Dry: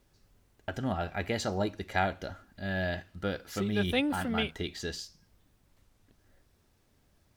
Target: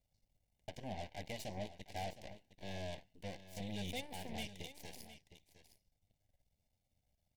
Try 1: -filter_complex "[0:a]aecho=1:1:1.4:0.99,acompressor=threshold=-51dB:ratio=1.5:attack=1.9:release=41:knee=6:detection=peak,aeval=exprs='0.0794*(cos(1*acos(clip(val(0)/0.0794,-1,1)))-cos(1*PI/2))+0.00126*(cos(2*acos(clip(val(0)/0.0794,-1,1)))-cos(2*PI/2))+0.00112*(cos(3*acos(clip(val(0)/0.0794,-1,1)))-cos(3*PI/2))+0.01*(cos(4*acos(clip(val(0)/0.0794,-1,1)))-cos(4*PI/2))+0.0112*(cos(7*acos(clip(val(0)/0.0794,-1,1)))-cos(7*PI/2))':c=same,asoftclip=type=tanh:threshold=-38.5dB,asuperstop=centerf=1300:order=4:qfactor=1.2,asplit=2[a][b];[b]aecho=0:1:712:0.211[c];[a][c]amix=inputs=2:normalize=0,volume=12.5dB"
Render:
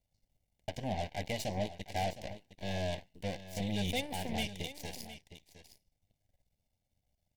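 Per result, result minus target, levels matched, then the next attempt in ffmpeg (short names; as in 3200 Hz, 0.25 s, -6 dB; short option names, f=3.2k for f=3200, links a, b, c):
compressor: peak gain reduction -3 dB; soft clip: distortion -3 dB
-filter_complex "[0:a]aecho=1:1:1.4:0.99,acompressor=threshold=-59.5dB:ratio=1.5:attack=1.9:release=41:knee=6:detection=peak,aeval=exprs='0.0794*(cos(1*acos(clip(val(0)/0.0794,-1,1)))-cos(1*PI/2))+0.00126*(cos(2*acos(clip(val(0)/0.0794,-1,1)))-cos(2*PI/2))+0.00112*(cos(3*acos(clip(val(0)/0.0794,-1,1)))-cos(3*PI/2))+0.01*(cos(4*acos(clip(val(0)/0.0794,-1,1)))-cos(4*PI/2))+0.0112*(cos(7*acos(clip(val(0)/0.0794,-1,1)))-cos(7*PI/2))':c=same,asoftclip=type=tanh:threshold=-38.5dB,asuperstop=centerf=1300:order=4:qfactor=1.2,asplit=2[a][b];[b]aecho=0:1:712:0.211[c];[a][c]amix=inputs=2:normalize=0,volume=12.5dB"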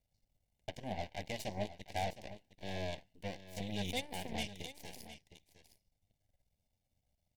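soft clip: distortion -4 dB
-filter_complex "[0:a]aecho=1:1:1.4:0.99,acompressor=threshold=-59.5dB:ratio=1.5:attack=1.9:release=41:knee=6:detection=peak,aeval=exprs='0.0794*(cos(1*acos(clip(val(0)/0.0794,-1,1)))-cos(1*PI/2))+0.00126*(cos(2*acos(clip(val(0)/0.0794,-1,1)))-cos(2*PI/2))+0.00112*(cos(3*acos(clip(val(0)/0.0794,-1,1)))-cos(3*PI/2))+0.01*(cos(4*acos(clip(val(0)/0.0794,-1,1)))-cos(4*PI/2))+0.0112*(cos(7*acos(clip(val(0)/0.0794,-1,1)))-cos(7*PI/2))':c=same,asoftclip=type=tanh:threshold=-47dB,asuperstop=centerf=1300:order=4:qfactor=1.2,asplit=2[a][b];[b]aecho=0:1:712:0.211[c];[a][c]amix=inputs=2:normalize=0,volume=12.5dB"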